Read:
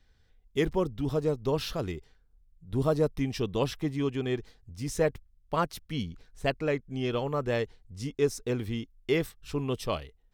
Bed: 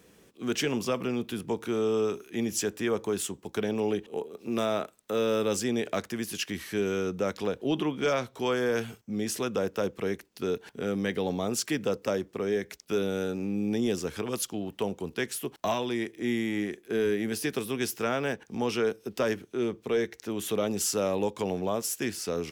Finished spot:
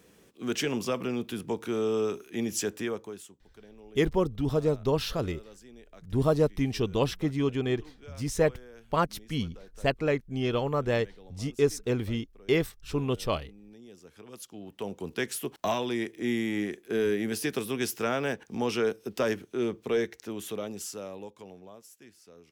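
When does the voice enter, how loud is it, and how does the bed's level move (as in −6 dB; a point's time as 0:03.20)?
3.40 s, +2.0 dB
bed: 0:02.79 −1 dB
0:03.47 −23 dB
0:13.86 −23 dB
0:15.14 0 dB
0:19.99 0 dB
0:21.97 −22.5 dB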